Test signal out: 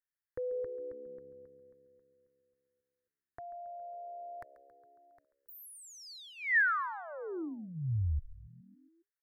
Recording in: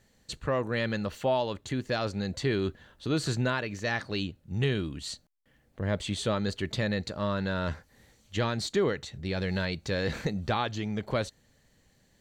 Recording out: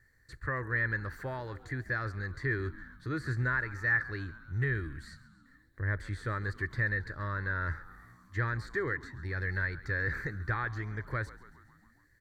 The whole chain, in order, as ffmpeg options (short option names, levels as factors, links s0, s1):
-filter_complex "[0:a]firequalizer=gain_entry='entry(120,0);entry(190,-17);entry(320,-6);entry(690,-17);entry(1100,-4);entry(1800,8);entry(2800,-24);entry(4500,-9);entry(6500,-13);entry(11000,-4)':delay=0.05:min_phase=1,acrossover=split=2900[s0][s1];[s1]acompressor=threshold=0.002:ratio=4:attack=1:release=60[s2];[s0][s2]amix=inputs=2:normalize=0,asplit=7[s3][s4][s5][s6][s7][s8][s9];[s4]adelay=137,afreqshift=-68,volume=0.133[s10];[s5]adelay=274,afreqshift=-136,volume=0.0822[s11];[s6]adelay=411,afreqshift=-204,volume=0.0513[s12];[s7]adelay=548,afreqshift=-272,volume=0.0316[s13];[s8]adelay=685,afreqshift=-340,volume=0.0197[s14];[s9]adelay=822,afreqshift=-408,volume=0.0122[s15];[s3][s10][s11][s12][s13][s14][s15]amix=inputs=7:normalize=0"